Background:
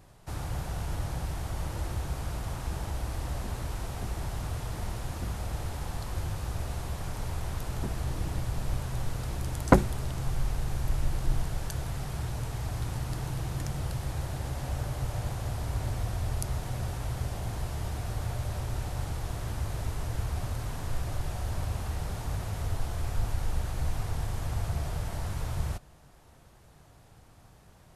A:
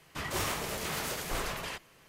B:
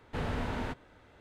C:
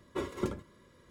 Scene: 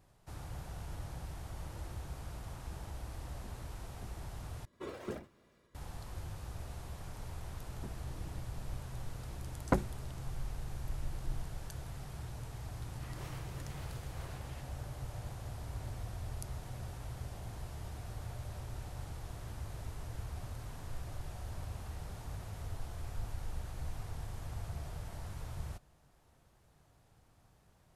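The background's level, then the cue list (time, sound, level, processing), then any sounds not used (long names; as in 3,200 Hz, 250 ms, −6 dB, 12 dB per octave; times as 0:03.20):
background −10.5 dB
0:04.65: overwrite with C −10 dB + delay with pitch and tempo change per echo 84 ms, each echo +3 semitones, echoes 3
0:12.85: mix in A −17.5 dB + high-shelf EQ 5,300 Hz −8 dB
not used: B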